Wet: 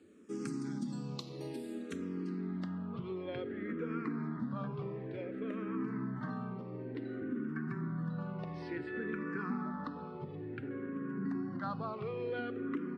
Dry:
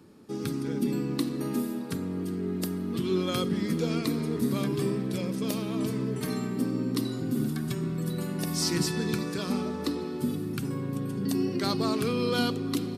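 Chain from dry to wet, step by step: high-pass 99 Hz; treble shelf 6.9 kHz -10 dB; compression, threshold -28 dBFS, peak gain reduction 6.5 dB; low-pass sweep 7.7 kHz -> 1.6 kHz, 1.78–2.92 s; barber-pole phaser -0.56 Hz; trim -4 dB

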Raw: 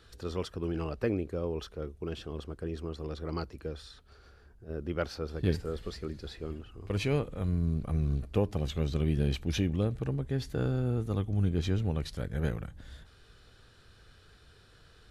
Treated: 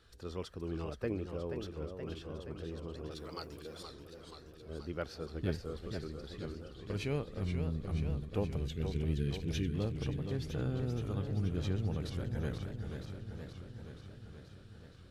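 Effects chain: 3.11–3.83 s: RIAA curve recording; 8.56–9.74 s: time-frequency box 490–1400 Hz -25 dB; modulated delay 477 ms, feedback 69%, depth 154 cents, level -7 dB; trim -6.5 dB

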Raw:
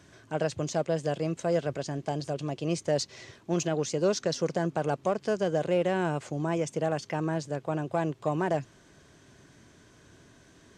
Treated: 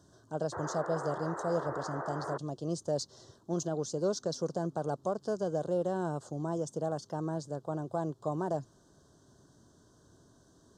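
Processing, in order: painted sound noise, 0.52–2.38 s, 300–2400 Hz -31 dBFS; Butterworth band-stop 2.3 kHz, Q 0.87; trim -5 dB

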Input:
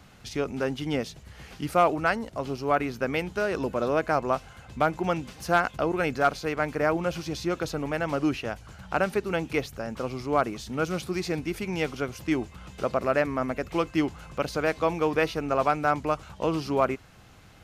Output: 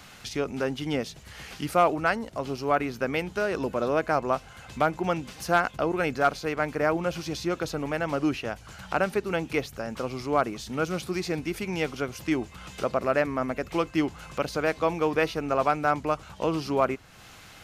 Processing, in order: peaking EQ 63 Hz -2.5 dB 1.9 oct; tape noise reduction on one side only encoder only

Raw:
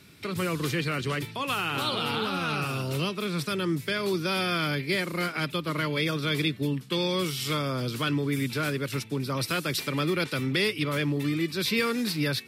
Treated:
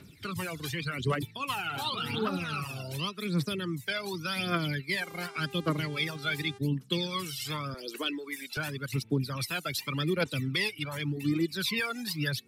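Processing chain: 7.74–8.57 s: high-pass 300 Hz 24 dB/octave; reverb removal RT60 1.2 s; phaser 0.88 Hz, delay 1.5 ms, feedback 69%; 5.00–6.57 s: mains buzz 400 Hz, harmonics 28, -44 dBFS -6 dB/octave; trim -5 dB

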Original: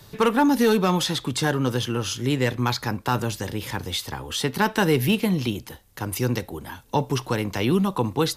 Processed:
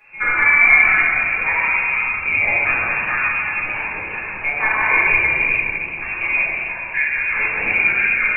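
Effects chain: frequency inversion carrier 2.6 kHz; simulated room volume 130 m³, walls hard, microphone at 1.4 m; modulated delay 127 ms, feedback 72%, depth 168 cents, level -19 dB; trim -5 dB

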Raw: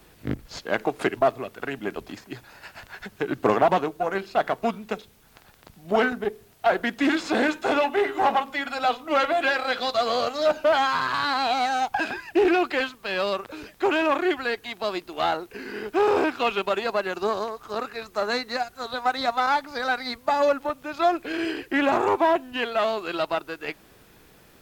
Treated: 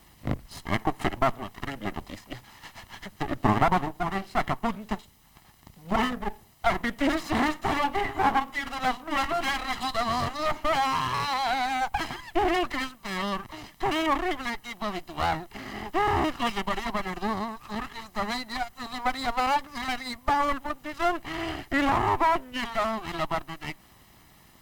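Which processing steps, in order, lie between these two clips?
comb filter that takes the minimum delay 1 ms; dynamic bell 4.7 kHz, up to -4 dB, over -44 dBFS, Q 0.78

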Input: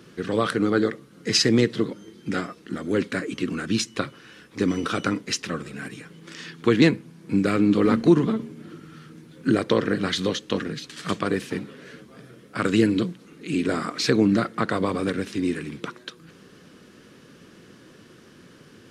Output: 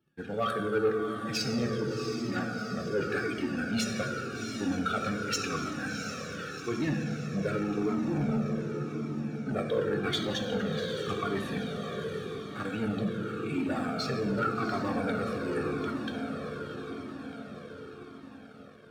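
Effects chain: expander on every frequency bin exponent 1.5; treble shelf 4.1 kHz -8.5 dB; reverse; compression 12:1, threshold -30 dBFS, peak gain reduction 19 dB; reverse; echo that smears into a reverb 719 ms, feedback 61%, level -8 dB; on a send at -2 dB: reverberation RT60 2.6 s, pre-delay 3 ms; on the sum: waveshaping leveller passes 2; comb of notches 1 kHz; Shepard-style flanger falling 0.88 Hz; trim +2 dB

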